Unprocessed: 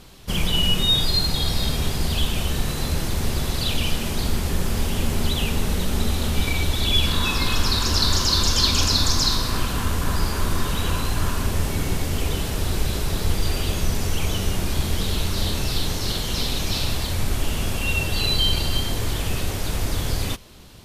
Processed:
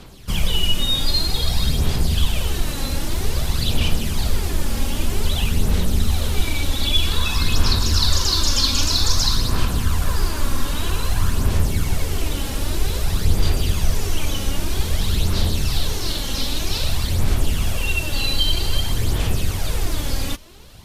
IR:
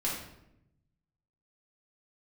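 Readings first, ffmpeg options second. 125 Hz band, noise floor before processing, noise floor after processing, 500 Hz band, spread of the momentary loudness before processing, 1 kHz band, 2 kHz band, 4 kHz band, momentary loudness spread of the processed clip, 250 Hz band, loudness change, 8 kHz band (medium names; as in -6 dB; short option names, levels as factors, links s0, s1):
+2.0 dB, -27 dBFS, -26 dBFS, -0.5 dB, 8 LU, -1.0 dB, -0.5 dB, 0.0 dB, 7 LU, -0.5 dB, +1.0 dB, +1.0 dB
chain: -filter_complex "[0:a]aphaser=in_gain=1:out_gain=1:delay=3.7:decay=0.47:speed=0.52:type=sinusoidal,acrossover=split=140|3000[s0][s1][s2];[s1]acompressor=threshold=0.0355:ratio=2[s3];[s0][s3][s2]amix=inputs=3:normalize=0"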